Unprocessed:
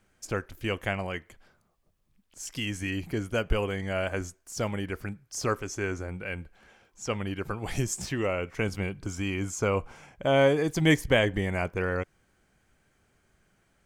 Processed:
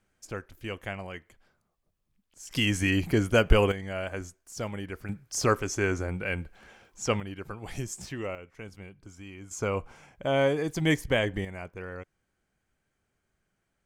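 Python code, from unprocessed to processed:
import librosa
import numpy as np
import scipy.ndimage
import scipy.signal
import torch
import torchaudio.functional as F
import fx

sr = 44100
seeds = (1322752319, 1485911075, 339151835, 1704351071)

y = fx.gain(x, sr, db=fx.steps((0.0, -6.0), (2.51, 6.5), (3.72, -4.0), (5.09, 4.0), (7.2, -6.0), (8.35, -14.0), (9.51, -3.0), (11.45, -10.5)))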